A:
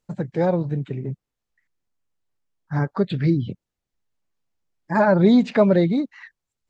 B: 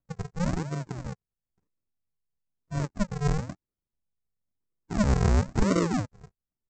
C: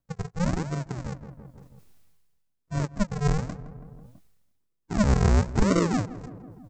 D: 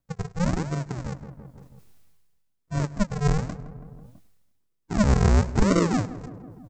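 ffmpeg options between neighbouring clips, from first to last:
-af "aresample=16000,acrusher=samples=37:mix=1:aa=0.000001:lfo=1:lforange=37:lforate=1,aresample=44100,equalizer=f=3.2k:t=o:w=0.89:g=-10,volume=-7dB"
-filter_complex "[0:a]asplit=2[a][b];[b]adelay=164,lowpass=f=1.4k:p=1,volume=-17.5dB,asplit=2[c][d];[d]adelay=164,lowpass=f=1.4k:p=1,volume=0.43,asplit=2[e][f];[f]adelay=164,lowpass=f=1.4k:p=1,volume=0.43,asplit=2[g][h];[h]adelay=164,lowpass=f=1.4k:p=1,volume=0.43[i];[a][c][e][g][i]amix=inputs=5:normalize=0,areverse,acompressor=mode=upward:threshold=-34dB:ratio=2.5,areverse,volume=2dB"
-af "aecho=1:1:103:0.0891,volume=1.5dB"

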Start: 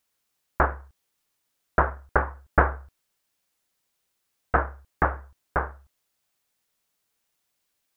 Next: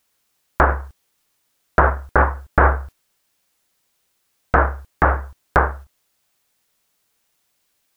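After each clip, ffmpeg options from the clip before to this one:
-af "agate=range=-6dB:threshold=-47dB:ratio=16:detection=peak,alimiter=level_in=15dB:limit=-1dB:release=50:level=0:latency=1,volume=-1dB"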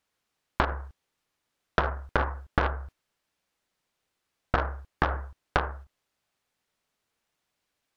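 -af "aeval=exprs='0.841*(cos(1*acos(clip(val(0)/0.841,-1,1)))-cos(1*PI/2))+0.237*(cos(3*acos(clip(val(0)/0.841,-1,1)))-cos(3*PI/2))+0.0596*(cos(5*acos(clip(val(0)/0.841,-1,1)))-cos(5*PI/2))+0.0188*(cos(6*acos(clip(val(0)/0.841,-1,1)))-cos(6*PI/2))':c=same,acompressor=threshold=-20dB:ratio=6,aemphasis=mode=reproduction:type=50kf"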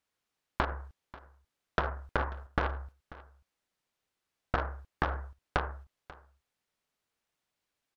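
-af "aecho=1:1:539:0.106,volume=-5dB"

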